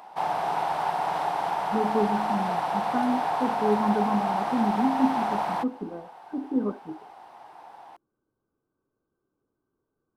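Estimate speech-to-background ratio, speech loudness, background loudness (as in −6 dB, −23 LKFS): −1.5 dB, −29.0 LKFS, −27.5 LKFS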